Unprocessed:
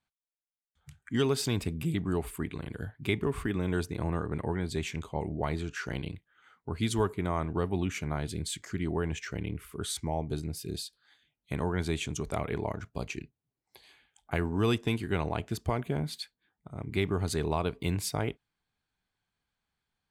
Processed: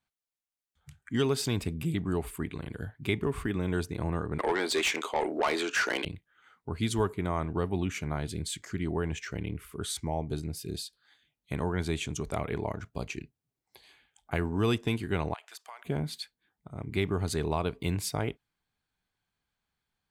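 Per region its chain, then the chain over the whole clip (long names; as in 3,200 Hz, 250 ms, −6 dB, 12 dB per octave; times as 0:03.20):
0:04.39–0:06.05: high-pass filter 280 Hz 24 dB per octave + mid-hump overdrive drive 21 dB, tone 7,500 Hz, clips at −17.5 dBFS
0:15.34–0:15.85: high-pass filter 840 Hz 24 dB per octave + downward compressor 4 to 1, threshold −42 dBFS
whole clip: no processing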